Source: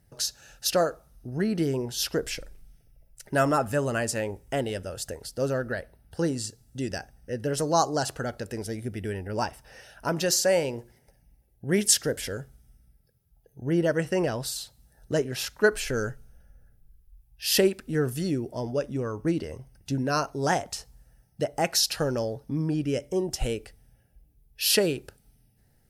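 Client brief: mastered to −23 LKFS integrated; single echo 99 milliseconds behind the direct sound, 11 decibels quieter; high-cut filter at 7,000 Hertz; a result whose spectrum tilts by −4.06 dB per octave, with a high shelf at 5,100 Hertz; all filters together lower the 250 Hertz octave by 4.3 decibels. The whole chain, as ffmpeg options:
ffmpeg -i in.wav -af "lowpass=7000,equalizer=frequency=250:width_type=o:gain=-6.5,highshelf=frequency=5100:gain=-3.5,aecho=1:1:99:0.282,volume=7dB" out.wav

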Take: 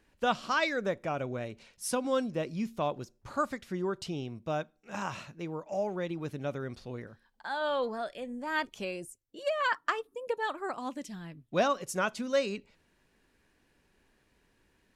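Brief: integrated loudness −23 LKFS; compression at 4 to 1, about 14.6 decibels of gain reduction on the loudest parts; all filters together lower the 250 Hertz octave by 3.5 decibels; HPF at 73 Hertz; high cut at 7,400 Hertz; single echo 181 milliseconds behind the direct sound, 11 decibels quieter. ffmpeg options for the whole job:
ffmpeg -i in.wav -af "highpass=73,lowpass=7400,equalizer=frequency=250:width_type=o:gain=-4.5,acompressor=threshold=-42dB:ratio=4,aecho=1:1:181:0.282,volume=22dB" out.wav

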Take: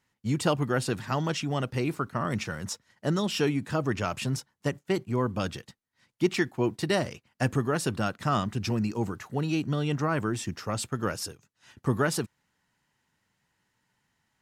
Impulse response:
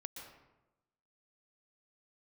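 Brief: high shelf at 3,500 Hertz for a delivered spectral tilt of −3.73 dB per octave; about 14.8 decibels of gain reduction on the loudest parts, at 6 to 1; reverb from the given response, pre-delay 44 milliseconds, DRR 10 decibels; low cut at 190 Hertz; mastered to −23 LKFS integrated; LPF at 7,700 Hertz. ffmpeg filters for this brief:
-filter_complex "[0:a]highpass=190,lowpass=7700,highshelf=frequency=3500:gain=8.5,acompressor=threshold=-36dB:ratio=6,asplit=2[link_01][link_02];[1:a]atrim=start_sample=2205,adelay=44[link_03];[link_02][link_03]afir=irnorm=-1:irlink=0,volume=-6.5dB[link_04];[link_01][link_04]amix=inputs=2:normalize=0,volume=17dB"

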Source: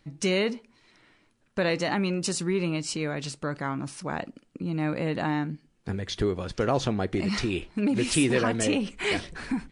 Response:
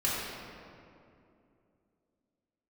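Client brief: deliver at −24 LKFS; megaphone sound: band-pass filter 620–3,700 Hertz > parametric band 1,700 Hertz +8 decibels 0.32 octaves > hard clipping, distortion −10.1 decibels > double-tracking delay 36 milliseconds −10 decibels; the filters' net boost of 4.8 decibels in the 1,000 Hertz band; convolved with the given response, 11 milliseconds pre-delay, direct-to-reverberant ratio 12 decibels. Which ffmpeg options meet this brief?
-filter_complex "[0:a]equalizer=frequency=1000:width_type=o:gain=7,asplit=2[link_01][link_02];[1:a]atrim=start_sample=2205,adelay=11[link_03];[link_02][link_03]afir=irnorm=-1:irlink=0,volume=-21.5dB[link_04];[link_01][link_04]amix=inputs=2:normalize=0,highpass=620,lowpass=3700,equalizer=frequency=1700:width_type=o:width=0.32:gain=8,asoftclip=type=hard:threshold=-22.5dB,asplit=2[link_05][link_06];[link_06]adelay=36,volume=-10dB[link_07];[link_05][link_07]amix=inputs=2:normalize=0,volume=7dB"

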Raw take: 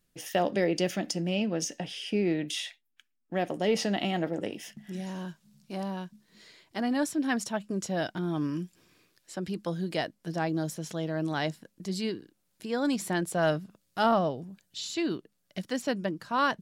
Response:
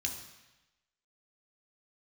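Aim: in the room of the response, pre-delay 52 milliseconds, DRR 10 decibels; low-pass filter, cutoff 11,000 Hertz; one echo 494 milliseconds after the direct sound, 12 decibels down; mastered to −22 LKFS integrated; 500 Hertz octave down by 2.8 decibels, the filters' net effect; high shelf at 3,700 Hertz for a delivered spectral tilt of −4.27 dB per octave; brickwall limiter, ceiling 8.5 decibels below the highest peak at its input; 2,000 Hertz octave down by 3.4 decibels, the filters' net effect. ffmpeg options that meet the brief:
-filter_complex "[0:a]lowpass=11000,equalizer=frequency=500:width_type=o:gain=-3.5,equalizer=frequency=2000:width_type=o:gain=-6,highshelf=frequency=3700:gain=6,alimiter=limit=-22dB:level=0:latency=1,aecho=1:1:494:0.251,asplit=2[link_01][link_02];[1:a]atrim=start_sample=2205,adelay=52[link_03];[link_02][link_03]afir=irnorm=-1:irlink=0,volume=-12dB[link_04];[link_01][link_04]amix=inputs=2:normalize=0,volume=11dB"

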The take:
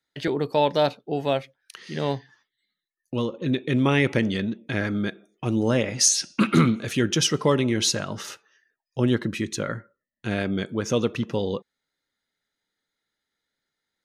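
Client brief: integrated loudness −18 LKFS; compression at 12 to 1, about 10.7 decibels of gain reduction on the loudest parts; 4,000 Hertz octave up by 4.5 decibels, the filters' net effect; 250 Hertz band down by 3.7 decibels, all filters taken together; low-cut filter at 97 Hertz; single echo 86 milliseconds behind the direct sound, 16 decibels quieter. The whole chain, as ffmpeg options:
ffmpeg -i in.wav -af "highpass=97,equalizer=frequency=250:width_type=o:gain=-4.5,equalizer=frequency=4000:width_type=o:gain=6,acompressor=threshold=-23dB:ratio=12,aecho=1:1:86:0.158,volume=11.5dB" out.wav

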